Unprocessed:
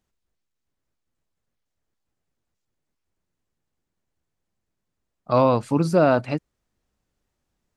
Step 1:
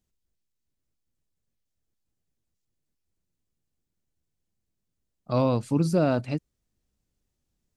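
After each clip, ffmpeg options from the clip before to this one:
-af "equalizer=f=1100:t=o:w=2.8:g=-10"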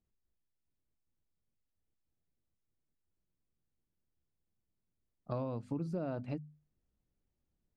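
-af "lowpass=f=1300:p=1,bandreject=f=50:t=h:w=6,bandreject=f=100:t=h:w=6,bandreject=f=150:t=h:w=6,bandreject=f=200:t=h:w=6,bandreject=f=250:t=h:w=6,acompressor=threshold=0.0282:ratio=6,volume=0.668"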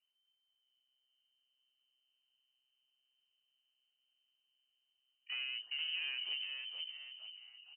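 -filter_complex "[0:a]asoftclip=type=tanh:threshold=0.0188,asplit=7[s0][s1][s2][s3][s4][s5][s6];[s1]adelay=466,afreqshift=-130,volume=0.631[s7];[s2]adelay=932,afreqshift=-260,volume=0.309[s8];[s3]adelay=1398,afreqshift=-390,volume=0.151[s9];[s4]adelay=1864,afreqshift=-520,volume=0.0741[s10];[s5]adelay=2330,afreqshift=-650,volume=0.0363[s11];[s6]adelay=2796,afreqshift=-780,volume=0.0178[s12];[s0][s7][s8][s9][s10][s11][s12]amix=inputs=7:normalize=0,lowpass=f=2600:t=q:w=0.5098,lowpass=f=2600:t=q:w=0.6013,lowpass=f=2600:t=q:w=0.9,lowpass=f=2600:t=q:w=2.563,afreqshift=-3100,volume=0.891"

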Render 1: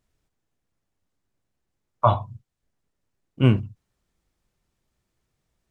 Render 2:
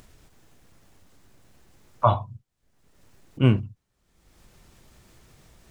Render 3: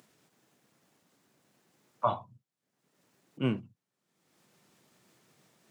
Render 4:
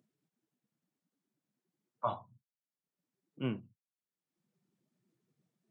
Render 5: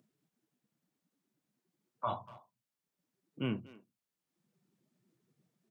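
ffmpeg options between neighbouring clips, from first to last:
-af "acompressor=mode=upward:threshold=0.02:ratio=2.5,volume=0.891"
-af "highpass=f=150:w=0.5412,highpass=f=150:w=1.3066,volume=0.398"
-af "afftdn=nr=18:nf=-58,volume=0.501"
-filter_complex "[0:a]acrossover=split=1400[s0][s1];[s0]alimiter=level_in=2.11:limit=0.0631:level=0:latency=1:release=24,volume=0.473[s2];[s2][s1]amix=inputs=2:normalize=0,asplit=2[s3][s4];[s4]adelay=240,highpass=300,lowpass=3400,asoftclip=type=hard:threshold=0.0178,volume=0.141[s5];[s3][s5]amix=inputs=2:normalize=0,volume=1.5"

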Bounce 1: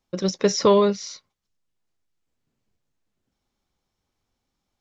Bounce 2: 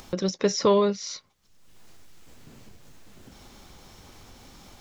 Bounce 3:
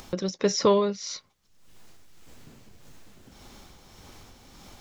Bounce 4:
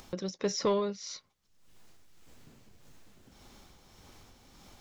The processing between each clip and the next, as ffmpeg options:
-af "acompressor=mode=upward:threshold=0.112:ratio=2.5,volume=0.668"
-af "tremolo=f=1.7:d=0.4,volume=1.12"
-af "asoftclip=type=tanh:threshold=0.251,volume=0.473"

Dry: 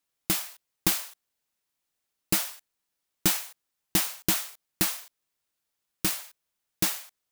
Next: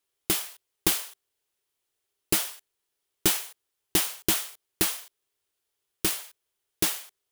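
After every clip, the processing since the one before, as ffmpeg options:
-af "equalizer=f=100:t=o:w=0.33:g=5,equalizer=f=160:t=o:w=0.33:g=-9,equalizer=f=250:t=o:w=0.33:g=-6,equalizer=f=400:t=o:w=0.33:g=11,equalizer=f=3150:t=o:w=0.33:g=4,equalizer=f=10000:t=o:w=0.33:g=3"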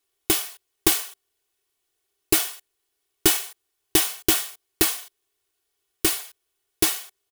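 -af "aecho=1:1:2.7:0.61,volume=1.41"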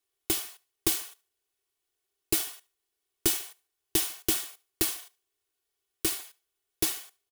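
-filter_complex "[0:a]acrossover=split=390|3000[s0][s1][s2];[s1]acompressor=threshold=0.0355:ratio=6[s3];[s0][s3][s2]amix=inputs=3:normalize=0,aecho=1:1:73|146:0.0668|0.0234,volume=0.473"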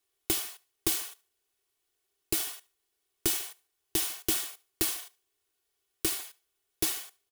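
-af "alimiter=limit=0.15:level=0:latency=1:release=176,volume=1.41"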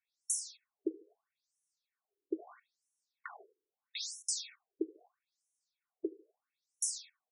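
-af "asuperstop=centerf=3000:order=4:qfactor=4,afftfilt=real='re*between(b*sr/1024,350*pow(7900/350,0.5+0.5*sin(2*PI*0.77*pts/sr))/1.41,350*pow(7900/350,0.5+0.5*sin(2*PI*0.77*pts/sr))*1.41)':imag='im*between(b*sr/1024,350*pow(7900/350,0.5+0.5*sin(2*PI*0.77*pts/sr))/1.41,350*pow(7900/350,0.5+0.5*sin(2*PI*0.77*pts/sr))*1.41)':win_size=1024:overlap=0.75"

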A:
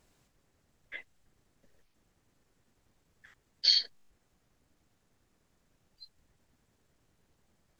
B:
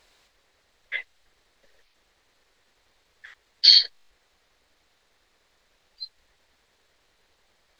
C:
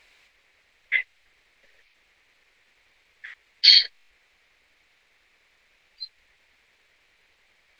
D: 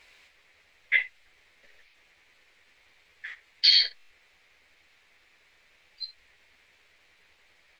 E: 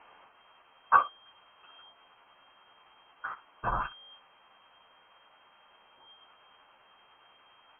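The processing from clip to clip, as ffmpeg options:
-filter_complex "[0:a]equalizer=f=125:t=o:w=1:g=-12,equalizer=f=250:t=o:w=1:g=-6,equalizer=f=500:t=o:w=1:g=5,equalizer=f=1000:t=o:w=1:g=4,equalizer=f=2000:t=o:w=1:g=7,equalizer=f=4000:t=o:w=1:g=11,asplit=2[s0][s1];[s1]alimiter=limit=0.282:level=0:latency=1:release=94,volume=1.26[s2];[s0][s2]amix=inputs=2:normalize=0,volume=0.631"
-af "equalizer=f=2300:t=o:w=0.83:g=13,volume=0.75"
-af "alimiter=limit=0.282:level=0:latency=1:release=34,aecho=1:1:12|63:0.531|0.168"
-af "lowpass=f=2700:t=q:w=0.5098,lowpass=f=2700:t=q:w=0.6013,lowpass=f=2700:t=q:w=0.9,lowpass=f=2700:t=q:w=2.563,afreqshift=-3200,volume=1.33"

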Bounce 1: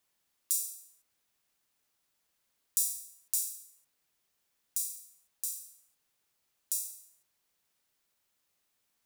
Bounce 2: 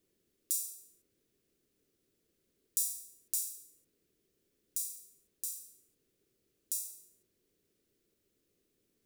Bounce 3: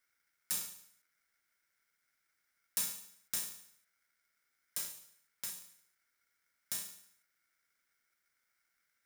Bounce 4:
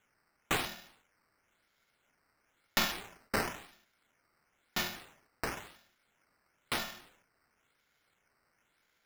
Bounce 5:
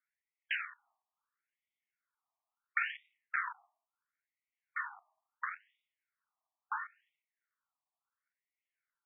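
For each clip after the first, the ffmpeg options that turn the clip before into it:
-af "lowshelf=f=580:t=q:w=3:g=13,volume=0.708"
-af "aeval=exprs='val(0)*sgn(sin(2*PI*1800*n/s))':c=same,volume=0.75"
-af "acrusher=samples=9:mix=1:aa=0.000001:lfo=1:lforange=9:lforate=0.98,volume=1.78"
-af "tiltshelf=f=1500:g=4,afwtdn=0.00794,afftfilt=real='re*between(b*sr/1024,850*pow(2700/850,0.5+0.5*sin(2*PI*0.73*pts/sr))/1.41,850*pow(2700/850,0.5+0.5*sin(2*PI*0.73*pts/sr))*1.41)':imag='im*between(b*sr/1024,850*pow(2700/850,0.5+0.5*sin(2*PI*0.73*pts/sr))/1.41,850*pow(2700/850,0.5+0.5*sin(2*PI*0.73*pts/sr))*1.41)':win_size=1024:overlap=0.75,volume=1.33"

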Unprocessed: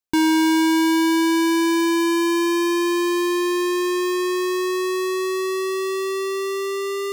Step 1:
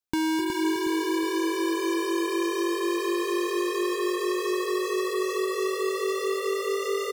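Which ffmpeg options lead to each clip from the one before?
-filter_complex "[0:a]asplit=2[s0][s1];[s1]asplit=6[s2][s3][s4][s5][s6][s7];[s2]adelay=253,afreqshift=50,volume=0.562[s8];[s3]adelay=506,afreqshift=100,volume=0.275[s9];[s4]adelay=759,afreqshift=150,volume=0.135[s10];[s5]adelay=1012,afreqshift=200,volume=0.0661[s11];[s6]adelay=1265,afreqshift=250,volume=0.0324[s12];[s7]adelay=1518,afreqshift=300,volume=0.0158[s13];[s8][s9][s10][s11][s12][s13]amix=inputs=6:normalize=0[s14];[s0][s14]amix=inputs=2:normalize=0,acompressor=threshold=0.0631:ratio=6,asplit=2[s15][s16];[s16]aecho=0:1:366|732|1098|1464|1830:0.501|0.195|0.0762|0.0297|0.0116[s17];[s15][s17]amix=inputs=2:normalize=0,volume=0.794"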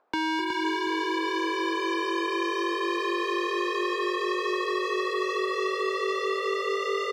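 -filter_complex "[0:a]acrossover=split=430 4900:gain=0.178 1 0.0708[s0][s1][s2];[s0][s1][s2]amix=inputs=3:normalize=0,acrossover=split=190|1100[s3][s4][s5];[s4]acompressor=mode=upward:threshold=0.00398:ratio=2.5[s6];[s3][s6][s5]amix=inputs=3:normalize=0,volume=1.5"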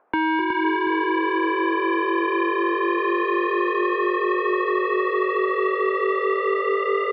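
-af "lowpass=f=2400:w=0.5412,lowpass=f=2400:w=1.3066,volume=2.11"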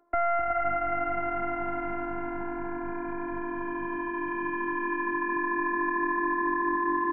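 -af "bandreject=f=60:t=h:w=6,bandreject=f=120:t=h:w=6,bandreject=f=180:t=h:w=6,bandreject=f=240:t=h:w=6,bandreject=f=300:t=h:w=6,bandreject=f=360:t=h:w=6,highpass=f=200:t=q:w=0.5412,highpass=f=200:t=q:w=1.307,lowpass=f=2200:t=q:w=0.5176,lowpass=f=2200:t=q:w=0.7071,lowpass=f=2200:t=q:w=1.932,afreqshift=-200,afftfilt=real='hypot(re,im)*cos(PI*b)':imag='0':win_size=512:overlap=0.75"

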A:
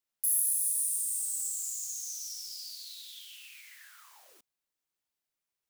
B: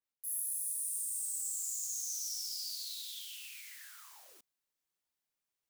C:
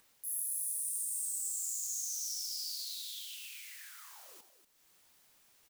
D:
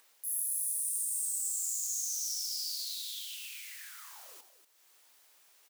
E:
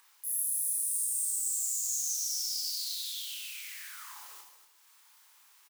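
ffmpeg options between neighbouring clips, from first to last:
-af "areverse,acompressor=threshold=0.0112:ratio=8,areverse,adynamicequalizer=threshold=0.00112:dfrequency=3600:dqfactor=0.7:tfrequency=3600:tqfactor=0.7:attack=5:release=100:ratio=0.375:range=3:mode=boostabove:tftype=highshelf,volume=0.841"
-filter_complex "[0:a]acompressor=mode=upward:threshold=0.00398:ratio=2.5,asplit=2[s0][s1];[s1]aecho=0:1:88|240:0.251|0.299[s2];[s0][s2]amix=inputs=2:normalize=0"
-af "highpass=430,volume=1.41"
-filter_complex "[0:a]lowshelf=f=780:t=q:w=3:g=-6,asplit=2[s0][s1];[s1]aecho=0:1:30|75|142.5|243.8|395.6:0.631|0.398|0.251|0.158|0.1[s2];[s0][s2]amix=inputs=2:normalize=0"

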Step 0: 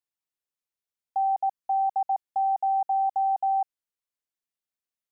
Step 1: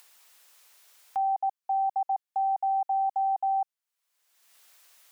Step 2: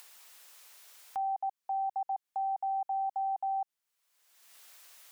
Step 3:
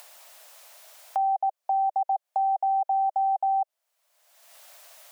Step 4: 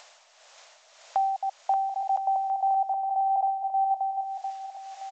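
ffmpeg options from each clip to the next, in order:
-af "highpass=680,acompressor=mode=upward:threshold=0.0251:ratio=2.5"
-af "alimiter=level_in=2.37:limit=0.0631:level=0:latency=1:release=104,volume=0.422,volume=1.41"
-af "acompressor=threshold=0.00794:ratio=1.5,highpass=f=620:t=q:w=4.7,volume=1.68"
-af "tremolo=f=1.8:d=0.56,aecho=1:1:580|1015|1341|1586|1769:0.631|0.398|0.251|0.158|0.1,volume=1.19" -ar 16000 -c:a g722

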